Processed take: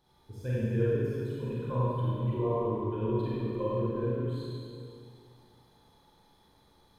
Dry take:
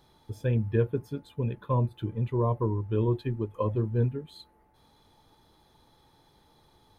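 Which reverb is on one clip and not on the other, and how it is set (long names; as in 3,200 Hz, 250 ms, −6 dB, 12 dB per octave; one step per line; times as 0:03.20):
four-comb reverb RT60 2.5 s, combs from 32 ms, DRR −8.5 dB
level −10 dB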